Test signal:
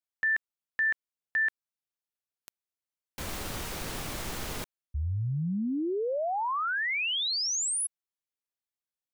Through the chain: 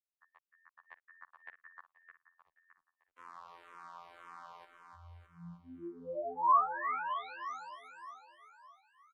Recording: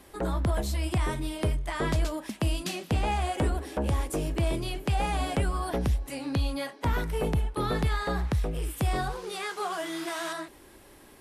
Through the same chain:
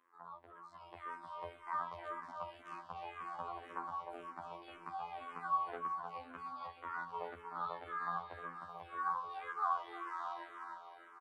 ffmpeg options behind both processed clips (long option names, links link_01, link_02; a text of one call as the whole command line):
ffmpeg -i in.wav -filter_complex "[0:a]aderivative,areverse,acompressor=threshold=-47dB:ratio=8:attack=12:release=348:knee=6:detection=rms,areverse,alimiter=level_in=12dB:limit=-24dB:level=0:latency=1:release=281,volume=-12dB,dynaudnorm=framelen=310:gausssize=5:maxgain=14dB,lowpass=frequency=1100:width_type=q:width=5.5,afftfilt=real='hypot(re,im)*cos(PI*b)':imag='0':win_size=2048:overlap=0.75,aecho=1:1:307|614|921|1228|1535|1842|2149|2456:0.501|0.301|0.18|0.108|0.065|0.039|0.0234|0.014,asplit=2[link_01][link_02];[link_02]afreqshift=-1.9[link_03];[link_01][link_03]amix=inputs=2:normalize=1,volume=2dB" out.wav